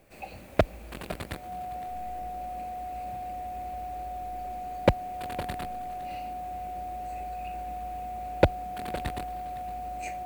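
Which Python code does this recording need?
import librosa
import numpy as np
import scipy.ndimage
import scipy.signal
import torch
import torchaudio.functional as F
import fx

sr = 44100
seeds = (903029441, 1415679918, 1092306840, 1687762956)

y = fx.notch(x, sr, hz=730.0, q=30.0)
y = fx.fix_echo_inverse(y, sr, delay_ms=510, level_db=-16.5)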